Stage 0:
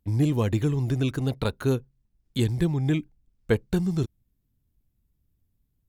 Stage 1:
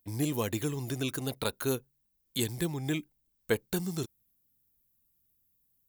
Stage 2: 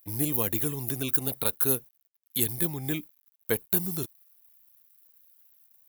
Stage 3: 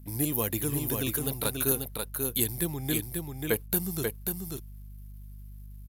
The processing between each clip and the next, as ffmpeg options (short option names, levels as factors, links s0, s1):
-af "aemphasis=mode=production:type=bsi,volume=0.708"
-af "acrusher=bits=10:mix=0:aa=0.000001,aexciter=amount=4.2:drive=7.7:freq=10000"
-af "aeval=exprs='val(0)+0.00501*(sin(2*PI*50*n/s)+sin(2*PI*2*50*n/s)/2+sin(2*PI*3*50*n/s)/3+sin(2*PI*4*50*n/s)/4+sin(2*PI*5*50*n/s)/5)':c=same,aecho=1:1:538:0.596,aresample=32000,aresample=44100"